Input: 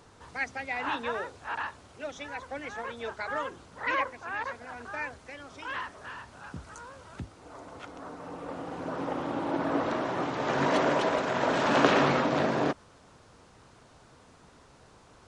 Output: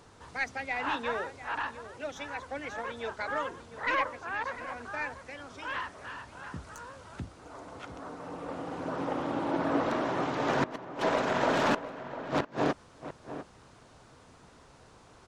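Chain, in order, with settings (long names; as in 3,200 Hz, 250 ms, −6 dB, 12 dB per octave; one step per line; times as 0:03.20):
stylus tracing distortion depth 0.055 ms
gate with flip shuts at −15 dBFS, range −29 dB
slap from a distant wall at 120 metres, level −12 dB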